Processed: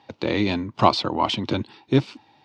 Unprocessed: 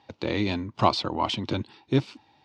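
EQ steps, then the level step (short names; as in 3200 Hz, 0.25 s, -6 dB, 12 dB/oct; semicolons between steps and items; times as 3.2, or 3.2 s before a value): HPF 98 Hz; high shelf 7100 Hz -4.5 dB; +4.5 dB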